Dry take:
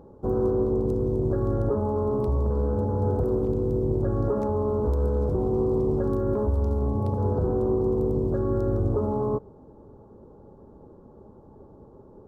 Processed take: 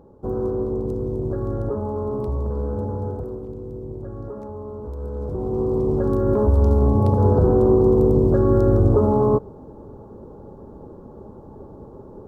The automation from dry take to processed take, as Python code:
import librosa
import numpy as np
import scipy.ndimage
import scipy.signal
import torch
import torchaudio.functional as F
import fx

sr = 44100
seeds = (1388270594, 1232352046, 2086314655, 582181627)

y = fx.gain(x, sr, db=fx.line((2.9, -0.5), (3.42, -8.5), (4.88, -8.5), (5.61, 1.5), (6.67, 8.5)))